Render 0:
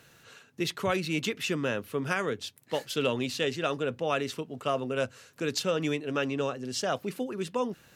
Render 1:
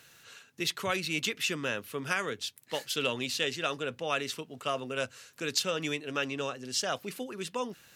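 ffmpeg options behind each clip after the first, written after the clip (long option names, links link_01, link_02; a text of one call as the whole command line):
ffmpeg -i in.wav -af "tiltshelf=frequency=1200:gain=-5,volume=-1.5dB" out.wav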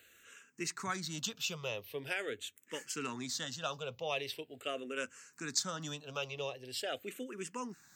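ffmpeg -i in.wav -filter_complex "[0:a]aexciter=amount=1.4:drive=0.8:freq=6400,asplit=2[link_01][link_02];[link_02]afreqshift=-0.43[link_03];[link_01][link_03]amix=inputs=2:normalize=1,volume=-3dB" out.wav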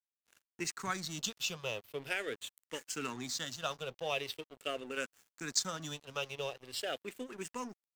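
ffmpeg -i in.wav -af "aeval=exprs='sgn(val(0))*max(abs(val(0))-0.00282,0)':channel_layout=same,volume=2dB" out.wav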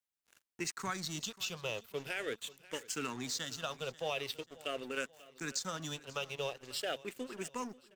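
ffmpeg -i in.wav -af "alimiter=level_in=2dB:limit=-24dB:level=0:latency=1:release=115,volume=-2dB,aecho=1:1:538|1076|1614:0.1|0.046|0.0212,volume=1dB" out.wav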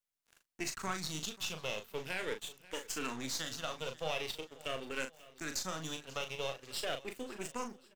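ffmpeg -i in.wav -filter_complex "[0:a]aeval=exprs='if(lt(val(0),0),0.447*val(0),val(0))':channel_layout=same,asplit=2[link_01][link_02];[link_02]adelay=38,volume=-7dB[link_03];[link_01][link_03]amix=inputs=2:normalize=0,volume=1.5dB" out.wav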